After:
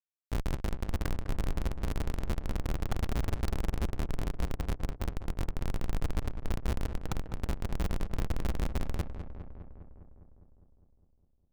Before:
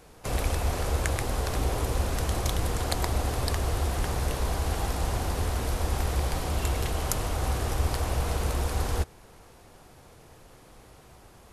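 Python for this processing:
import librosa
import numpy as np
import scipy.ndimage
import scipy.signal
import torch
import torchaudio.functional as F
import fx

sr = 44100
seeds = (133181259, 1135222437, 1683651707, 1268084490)

y = scipy.signal.sosfilt(scipy.signal.bessel(2, 7400.0, 'lowpass', norm='mag', fs=sr, output='sos'), x)
y = fx.schmitt(y, sr, flips_db=-20.5)
y = fx.echo_filtered(y, sr, ms=203, feedback_pct=71, hz=2200.0, wet_db=-9.5)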